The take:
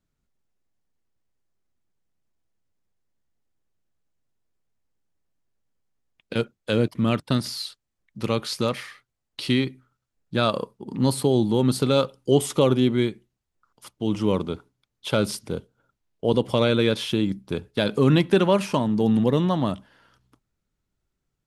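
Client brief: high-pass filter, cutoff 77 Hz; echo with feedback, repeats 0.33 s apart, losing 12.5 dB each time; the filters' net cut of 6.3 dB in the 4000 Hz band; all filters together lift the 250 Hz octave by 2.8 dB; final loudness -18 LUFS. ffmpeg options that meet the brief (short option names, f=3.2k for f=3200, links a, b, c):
-af "highpass=77,equalizer=f=250:t=o:g=3.5,equalizer=f=4k:t=o:g=-8,aecho=1:1:330|660|990:0.237|0.0569|0.0137,volume=4dB"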